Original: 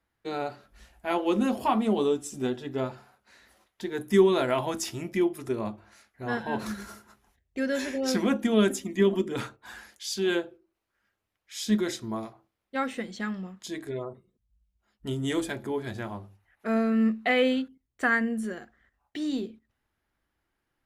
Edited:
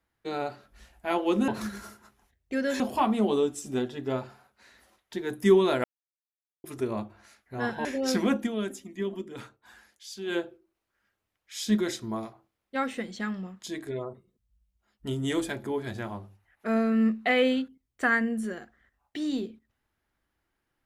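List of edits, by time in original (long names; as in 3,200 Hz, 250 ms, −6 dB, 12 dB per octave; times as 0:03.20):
0:04.52–0:05.32: silence
0:06.53–0:07.85: move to 0:01.48
0:08.39–0:10.40: duck −9.5 dB, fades 0.14 s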